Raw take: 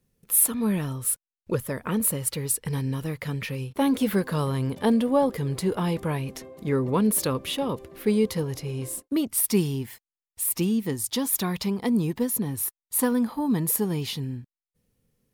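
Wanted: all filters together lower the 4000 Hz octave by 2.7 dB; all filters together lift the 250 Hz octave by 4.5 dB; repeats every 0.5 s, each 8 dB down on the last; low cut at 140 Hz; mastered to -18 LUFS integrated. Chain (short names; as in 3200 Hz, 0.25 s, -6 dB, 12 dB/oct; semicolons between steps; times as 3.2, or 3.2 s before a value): HPF 140 Hz; bell 250 Hz +6 dB; bell 4000 Hz -3.5 dB; feedback echo 0.5 s, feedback 40%, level -8 dB; gain +5 dB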